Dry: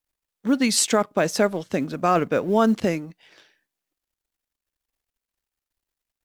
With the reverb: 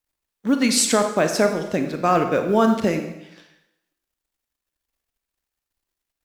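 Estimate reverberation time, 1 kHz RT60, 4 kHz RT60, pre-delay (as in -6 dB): 0.85 s, 0.85 s, 0.80 s, 24 ms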